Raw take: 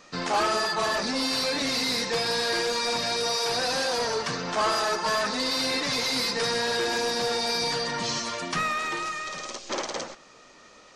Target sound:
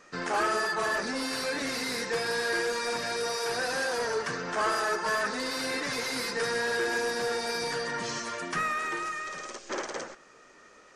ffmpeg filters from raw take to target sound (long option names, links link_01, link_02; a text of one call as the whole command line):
ffmpeg -i in.wav -af "equalizer=frequency=400:width_type=o:width=0.67:gain=6,equalizer=frequency=1600:width_type=o:width=0.67:gain=8,equalizer=frequency=4000:width_type=o:width=0.67:gain=-5,equalizer=frequency=10000:width_type=o:width=0.67:gain=6,volume=-6dB" out.wav